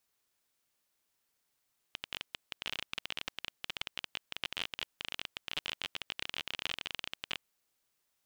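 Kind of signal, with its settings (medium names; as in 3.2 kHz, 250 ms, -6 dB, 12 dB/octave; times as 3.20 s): random clicks 26 per s -19 dBFS 5.42 s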